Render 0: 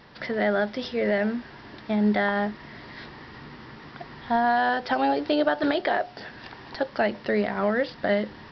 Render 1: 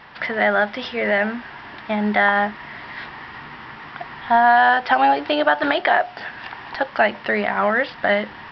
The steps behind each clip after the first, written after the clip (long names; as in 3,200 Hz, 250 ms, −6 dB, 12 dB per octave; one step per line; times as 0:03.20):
flat-topped bell 1,500 Hz +10 dB 2.5 octaves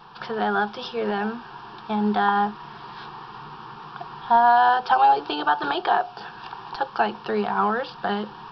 phaser with its sweep stopped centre 400 Hz, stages 8
level +1 dB